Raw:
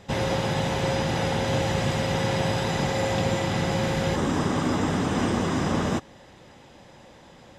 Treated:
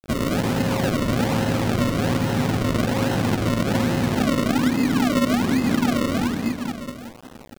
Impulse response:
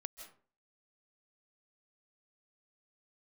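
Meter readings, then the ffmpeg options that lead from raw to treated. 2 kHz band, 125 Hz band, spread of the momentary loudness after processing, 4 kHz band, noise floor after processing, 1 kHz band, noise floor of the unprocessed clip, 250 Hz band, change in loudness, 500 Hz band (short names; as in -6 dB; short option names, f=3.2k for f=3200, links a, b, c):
+2.5 dB, +3.0 dB, 6 LU, +1.5 dB, -43 dBFS, +1.0 dB, -50 dBFS, +7.5 dB, +3.5 dB, +1.0 dB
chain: -filter_complex "[0:a]equalizer=f=250:w=2.5:g=13.5,aecho=1:1:270|513|731.7|928.5|1106:0.631|0.398|0.251|0.158|0.1[a];[1:a]atrim=start_sample=2205,atrim=end_sample=6174,asetrate=27342,aresample=44100[b];[a][b]afir=irnorm=-1:irlink=0,acrusher=bits=6:mix=0:aa=0.000001,acompressor=threshold=-18dB:ratio=6,acrusher=samples=37:mix=1:aa=0.000001:lfo=1:lforange=37:lforate=1.2,adynamicequalizer=threshold=0.00631:dfrequency=6700:dqfactor=0.7:tfrequency=6700:tqfactor=0.7:attack=5:release=100:ratio=0.375:range=2:mode=cutabove:tftype=highshelf,volume=1.5dB"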